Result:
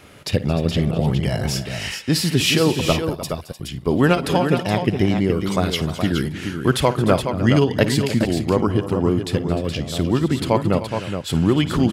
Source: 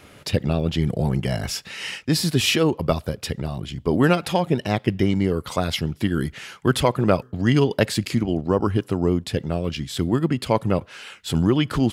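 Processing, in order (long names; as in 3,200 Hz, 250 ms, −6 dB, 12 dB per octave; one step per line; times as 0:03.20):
0:03.10–0:03.60: first difference
on a send: multi-tap delay 54/220/303/421 ms −16.5/−16.5/−14/−7 dB
on the sum: level +1.5 dB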